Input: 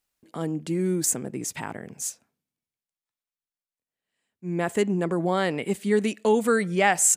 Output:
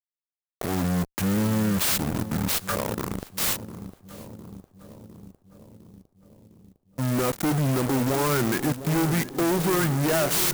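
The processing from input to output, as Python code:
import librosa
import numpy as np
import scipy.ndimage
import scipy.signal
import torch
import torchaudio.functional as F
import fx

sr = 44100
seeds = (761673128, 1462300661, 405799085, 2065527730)

p1 = fx.speed_glide(x, sr, from_pct=55, to_pct=81)
p2 = scipy.signal.sosfilt(scipy.signal.cheby1(8, 1.0, 6400.0, 'lowpass', fs=sr, output='sos'), p1)
p3 = fx.low_shelf(p2, sr, hz=110.0, db=-8.0)
p4 = fx.fuzz(p3, sr, gain_db=45.0, gate_db=-38.0)
p5 = p4 + fx.echo_filtered(p4, sr, ms=706, feedback_pct=68, hz=1100.0, wet_db=-12.0, dry=0)
p6 = fx.clock_jitter(p5, sr, seeds[0], jitter_ms=0.069)
y = p6 * 10.0 ** (-8.0 / 20.0)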